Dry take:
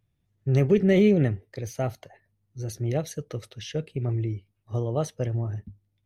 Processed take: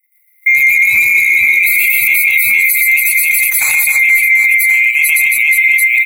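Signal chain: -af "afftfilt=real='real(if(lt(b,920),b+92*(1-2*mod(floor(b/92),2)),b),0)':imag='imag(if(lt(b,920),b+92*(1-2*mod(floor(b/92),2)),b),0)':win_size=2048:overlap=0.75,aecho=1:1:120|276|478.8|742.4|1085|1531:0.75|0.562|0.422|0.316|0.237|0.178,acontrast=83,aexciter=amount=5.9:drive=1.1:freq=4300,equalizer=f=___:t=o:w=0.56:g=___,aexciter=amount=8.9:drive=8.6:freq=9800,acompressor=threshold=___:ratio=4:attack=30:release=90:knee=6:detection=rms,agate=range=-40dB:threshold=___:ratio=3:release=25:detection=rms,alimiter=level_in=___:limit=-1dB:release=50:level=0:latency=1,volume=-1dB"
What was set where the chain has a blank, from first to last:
2200, 12, -19dB, -39dB, 11.5dB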